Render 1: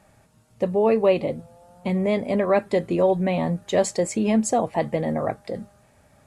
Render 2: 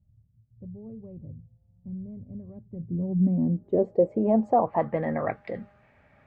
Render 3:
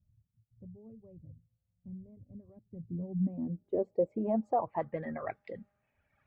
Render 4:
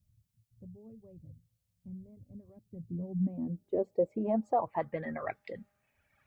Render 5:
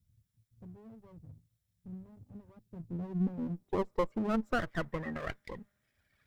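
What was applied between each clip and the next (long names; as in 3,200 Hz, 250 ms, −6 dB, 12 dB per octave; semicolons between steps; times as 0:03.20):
low-pass filter sweep 100 Hz → 2,200 Hz, 0:02.60–0:05.30; level −4 dB
reverb reduction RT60 1.6 s; level −7.5 dB
high-shelf EQ 2,300 Hz +9.5 dB
lower of the sound and its delayed copy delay 0.54 ms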